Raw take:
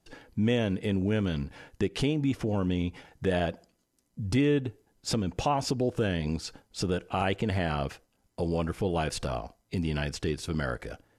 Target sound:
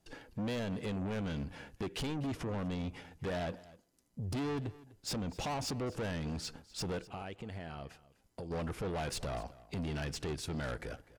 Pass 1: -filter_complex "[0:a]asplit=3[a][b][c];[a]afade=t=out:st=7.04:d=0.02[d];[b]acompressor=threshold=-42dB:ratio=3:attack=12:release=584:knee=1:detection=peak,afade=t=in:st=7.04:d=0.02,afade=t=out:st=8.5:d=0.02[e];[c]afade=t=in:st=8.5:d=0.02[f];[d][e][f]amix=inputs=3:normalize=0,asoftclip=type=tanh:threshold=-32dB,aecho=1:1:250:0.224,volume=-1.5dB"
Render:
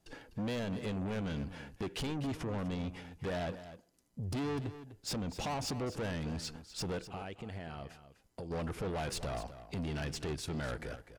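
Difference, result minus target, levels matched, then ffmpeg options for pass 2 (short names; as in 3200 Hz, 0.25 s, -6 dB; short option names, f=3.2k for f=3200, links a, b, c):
echo-to-direct +6.5 dB
-filter_complex "[0:a]asplit=3[a][b][c];[a]afade=t=out:st=7.04:d=0.02[d];[b]acompressor=threshold=-42dB:ratio=3:attack=12:release=584:knee=1:detection=peak,afade=t=in:st=7.04:d=0.02,afade=t=out:st=8.5:d=0.02[e];[c]afade=t=in:st=8.5:d=0.02[f];[d][e][f]amix=inputs=3:normalize=0,asoftclip=type=tanh:threshold=-32dB,aecho=1:1:250:0.106,volume=-1.5dB"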